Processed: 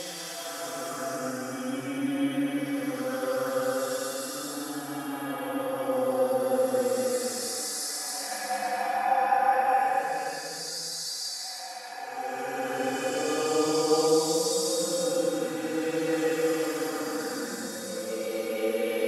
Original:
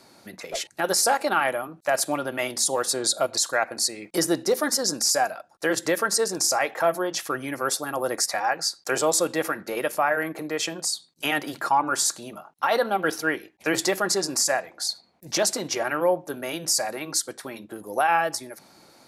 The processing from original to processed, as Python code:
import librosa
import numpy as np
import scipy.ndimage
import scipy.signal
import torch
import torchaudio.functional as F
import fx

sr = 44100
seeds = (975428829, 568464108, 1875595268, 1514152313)

y = x + 0.48 * np.pad(x, (int(4.0 * sr / 1000.0), 0))[:len(x)]
y = fx.echo_thinned(y, sr, ms=425, feedback_pct=26, hz=750.0, wet_db=-9.0)
y = fx.hpss(y, sr, part='percussive', gain_db=-16)
y = fx.paulstretch(y, sr, seeds[0], factor=7.3, window_s=0.25, from_s=7.16)
y = y * 10.0 ** (1.0 / 20.0)